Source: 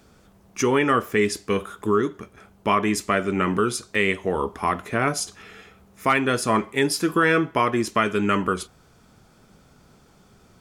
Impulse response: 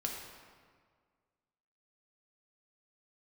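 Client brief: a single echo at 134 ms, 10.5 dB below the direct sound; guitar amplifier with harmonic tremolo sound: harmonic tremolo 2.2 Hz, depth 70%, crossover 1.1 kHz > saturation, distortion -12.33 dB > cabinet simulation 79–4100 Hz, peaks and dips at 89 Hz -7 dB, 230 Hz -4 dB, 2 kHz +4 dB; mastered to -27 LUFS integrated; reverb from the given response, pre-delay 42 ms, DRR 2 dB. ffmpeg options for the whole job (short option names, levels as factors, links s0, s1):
-filter_complex "[0:a]aecho=1:1:134:0.299,asplit=2[s0][s1];[1:a]atrim=start_sample=2205,adelay=42[s2];[s1][s2]afir=irnorm=-1:irlink=0,volume=0.631[s3];[s0][s3]amix=inputs=2:normalize=0,acrossover=split=1100[s4][s5];[s4]aeval=exprs='val(0)*(1-0.7/2+0.7/2*cos(2*PI*2.2*n/s))':c=same[s6];[s5]aeval=exprs='val(0)*(1-0.7/2-0.7/2*cos(2*PI*2.2*n/s))':c=same[s7];[s6][s7]amix=inputs=2:normalize=0,asoftclip=threshold=0.112,highpass=79,equalizer=f=89:t=q:w=4:g=-7,equalizer=f=230:t=q:w=4:g=-4,equalizer=f=2000:t=q:w=4:g=4,lowpass=f=4100:w=0.5412,lowpass=f=4100:w=1.3066,volume=0.944"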